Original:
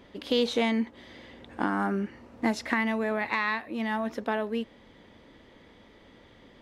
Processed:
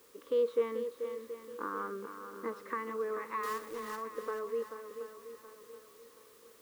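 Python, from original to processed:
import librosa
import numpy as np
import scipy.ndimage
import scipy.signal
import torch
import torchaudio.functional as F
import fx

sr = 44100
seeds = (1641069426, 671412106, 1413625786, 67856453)

y = fx.double_bandpass(x, sr, hz=730.0, octaves=1.3)
y = fx.dmg_noise_colour(y, sr, seeds[0], colour='white', level_db=-64.0)
y = fx.quant_companded(y, sr, bits=4, at=(3.43, 3.96))
y = fx.echo_swing(y, sr, ms=726, ratio=1.5, feedback_pct=36, wet_db=-9.0)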